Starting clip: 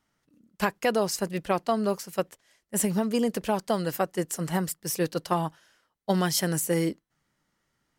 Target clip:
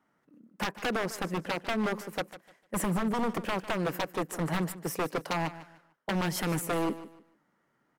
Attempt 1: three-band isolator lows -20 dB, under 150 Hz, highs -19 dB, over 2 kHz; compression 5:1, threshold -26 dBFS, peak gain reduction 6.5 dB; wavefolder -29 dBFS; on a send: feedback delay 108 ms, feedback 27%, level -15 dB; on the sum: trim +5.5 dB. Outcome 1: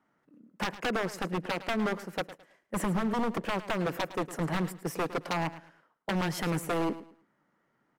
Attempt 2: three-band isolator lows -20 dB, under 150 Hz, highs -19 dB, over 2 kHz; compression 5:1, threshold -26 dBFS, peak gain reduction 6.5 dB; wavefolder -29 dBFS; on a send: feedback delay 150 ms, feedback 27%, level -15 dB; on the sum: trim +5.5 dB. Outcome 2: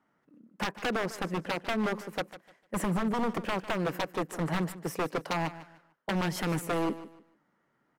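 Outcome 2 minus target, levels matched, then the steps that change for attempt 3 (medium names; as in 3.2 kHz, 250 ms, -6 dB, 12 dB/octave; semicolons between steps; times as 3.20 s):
8 kHz band -4.0 dB
add after compression: treble shelf 6.7 kHz +7.5 dB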